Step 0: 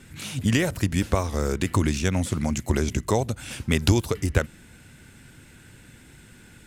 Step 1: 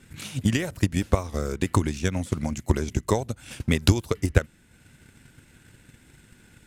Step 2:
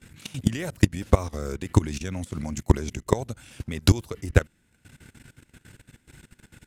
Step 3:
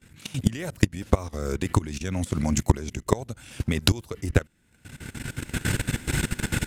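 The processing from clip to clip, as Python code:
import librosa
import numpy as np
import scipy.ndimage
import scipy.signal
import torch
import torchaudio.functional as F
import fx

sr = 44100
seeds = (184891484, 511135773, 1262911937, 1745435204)

y1 = fx.transient(x, sr, attack_db=8, sustain_db=-4)
y1 = y1 * librosa.db_to_amplitude(-5.0)
y2 = fx.level_steps(y1, sr, step_db=18)
y2 = y2 * librosa.db_to_amplitude(5.5)
y3 = fx.recorder_agc(y2, sr, target_db=-8.0, rise_db_per_s=24.0, max_gain_db=30)
y3 = y3 * librosa.db_to_amplitude(-5.0)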